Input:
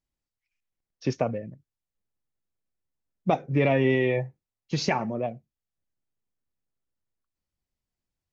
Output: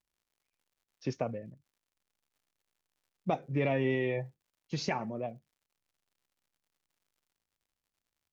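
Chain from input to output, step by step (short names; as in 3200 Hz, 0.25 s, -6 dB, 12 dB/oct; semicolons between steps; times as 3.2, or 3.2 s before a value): crackle 120/s -56 dBFS; gain -7.5 dB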